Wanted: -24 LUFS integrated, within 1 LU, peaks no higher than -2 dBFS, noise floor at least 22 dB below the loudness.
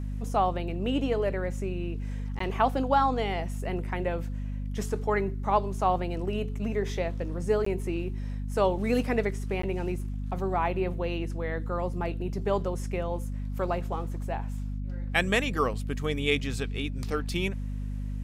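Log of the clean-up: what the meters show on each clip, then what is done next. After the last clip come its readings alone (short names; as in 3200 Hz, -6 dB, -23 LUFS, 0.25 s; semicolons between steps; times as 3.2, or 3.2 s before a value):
dropouts 3; longest dropout 14 ms; hum 50 Hz; harmonics up to 250 Hz; hum level -30 dBFS; loudness -30.0 LUFS; peak -9.5 dBFS; loudness target -24.0 LUFS
-> interpolate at 2.39/7.65/9.62, 14 ms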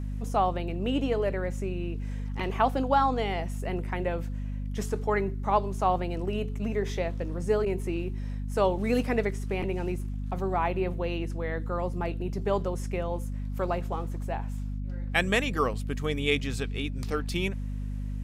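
dropouts 0; hum 50 Hz; harmonics up to 250 Hz; hum level -30 dBFS
-> de-hum 50 Hz, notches 5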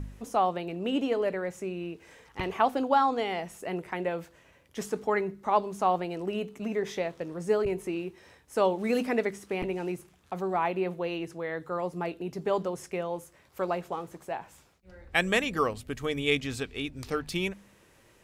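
hum none; loudness -30.5 LUFS; peak -10.0 dBFS; loudness target -24.0 LUFS
-> gain +6.5 dB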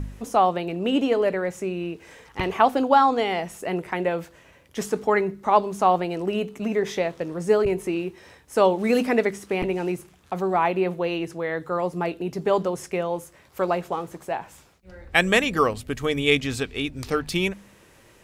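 loudness -24.0 LUFS; peak -3.5 dBFS; noise floor -54 dBFS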